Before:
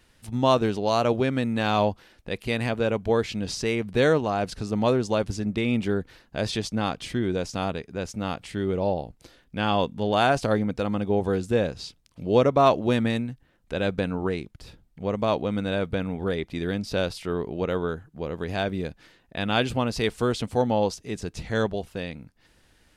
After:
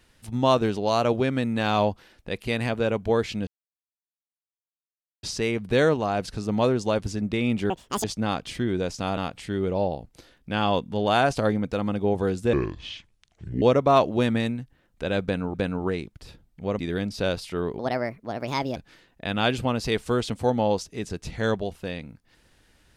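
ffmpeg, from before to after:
-filter_complex "[0:a]asplit=11[a][b][c][d][e][f][g][h][i][j][k];[a]atrim=end=3.47,asetpts=PTS-STARTPTS,afade=t=out:st=3.466:d=0.004:c=hsin,apad=pad_dur=1.76[l];[b]atrim=start=3.47:end=5.944,asetpts=PTS-STARTPTS,afade=t=in:d=0.004:c=hsin[m];[c]atrim=start=5.94:end=6.59,asetpts=PTS-STARTPTS,asetrate=84231,aresample=44100[n];[d]atrim=start=6.586:end=7.722[o];[e]atrim=start=8.228:end=11.594[p];[f]atrim=start=11.59:end=12.32,asetpts=PTS-STARTPTS,asetrate=29547,aresample=44100,atrim=end_sample=48049,asetpts=PTS-STARTPTS[q];[g]atrim=start=12.316:end=14.242[r];[h]atrim=start=13.928:end=15.182[s];[i]atrim=start=16.518:end=17.524[t];[j]atrim=start=17.52:end=18.88,asetpts=PTS-STARTPTS,asetrate=61740,aresample=44100[u];[k]atrim=start=18.876[v];[l][m]concat=n=2:v=0:a=1[w];[w][n]acrossfade=d=0.004:c1=hsin:c2=hsin[x];[x][o]acrossfade=d=0.004:c1=hsin:c2=hsin[y];[y][p]acrossfade=d=0.004:c1=hsin:c2=hsin[z];[z][q]acrossfade=d=0.004:c1=hsin:c2=hsin[aa];[aa][r]acrossfade=d=0.004:c1=hsin:c2=hsin[ab];[ab][s]acrossfade=d=0.004:c1=hsin:c2=hsin[ac];[ac][t]acrossfade=d=0.004:c1=hsin:c2=hsin[ad];[ad][u]acrossfade=d=0.004:c1=hsin:c2=hsin[ae];[ae][v]acrossfade=d=0.004:c1=hsin:c2=hsin"

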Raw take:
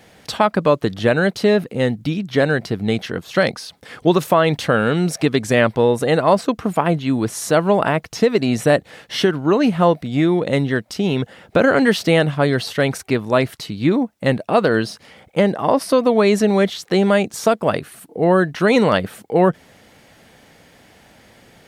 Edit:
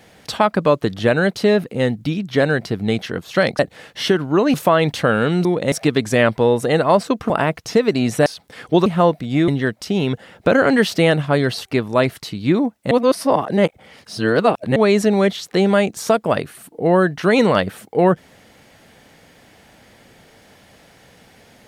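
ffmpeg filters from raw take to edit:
-filter_complex "[0:a]asplit=12[a][b][c][d][e][f][g][h][i][j][k][l];[a]atrim=end=3.592[m];[b]atrim=start=8.728:end=9.682[n];[c]atrim=start=4.188:end=5.102[o];[d]atrim=start=10.298:end=10.572[p];[e]atrim=start=5.098:end=6.682[q];[f]atrim=start=7.768:end=8.732[r];[g]atrim=start=3.588:end=4.192[s];[h]atrim=start=9.678:end=10.302[t];[i]atrim=start=10.568:end=12.742[u];[j]atrim=start=13.018:end=14.282[v];[k]atrim=start=14.278:end=16.132,asetpts=PTS-STARTPTS,areverse[w];[l]atrim=start=16.128[x];[m][n]acrossfade=d=0.004:c1=hsin:c2=hsin[y];[y][o]acrossfade=d=0.004:c1=hsin:c2=hsin[z];[z][p]acrossfade=d=0.004:c1=hsin:c2=hsin[aa];[aa][q]acrossfade=d=0.004:c1=hsin:c2=hsin[ab];[ab][r]acrossfade=d=0.004:c1=hsin:c2=hsin[ac];[ac][s]acrossfade=d=0.004:c1=hsin:c2=hsin[ad];[ad][t]acrossfade=d=0.004:c1=hsin:c2=hsin[ae];[ae][u]acrossfade=d=0.004:c1=hsin:c2=hsin[af];[af][v]acrossfade=d=0.004:c1=hsin:c2=hsin[ag];[ag][w]acrossfade=d=0.004:c1=hsin:c2=hsin[ah];[ah][x]acrossfade=d=0.004:c1=hsin:c2=hsin"

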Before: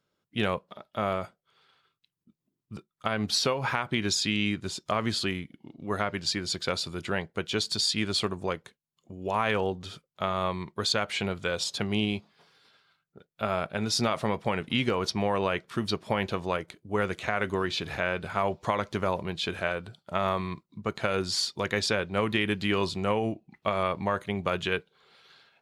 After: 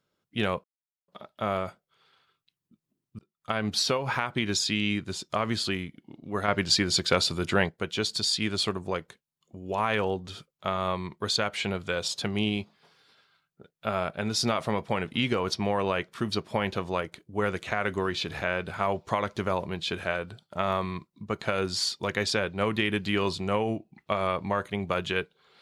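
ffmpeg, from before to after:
-filter_complex "[0:a]asplit=5[a][b][c][d][e];[a]atrim=end=0.64,asetpts=PTS-STARTPTS,afade=t=out:st=0.636:d=0.004:c=hsin,apad=pad_dur=0.44[f];[b]atrim=start=0.64:end=2.75,asetpts=PTS-STARTPTS,afade=t=in:d=0.004:c=hsin,afade=t=out:st=2.106:d=0.004:c=hsin[g];[c]atrim=start=2.75:end=6.042,asetpts=PTS-STARTPTS,afade=t=in:d=0.33[h];[d]atrim=start=6.038:end=7.252,asetpts=PTS-STARTPTS,volume=6dB[i];[e]atrim=start=7.248[j];[f][g][h]concat=n=3:v=0:a=1[k];[k][i]acrossfade=d=0.004:c1=hsin:c2=hsin[l];[l][j]acrossfade=d=0.004:c1=hsin:c2=hsin"

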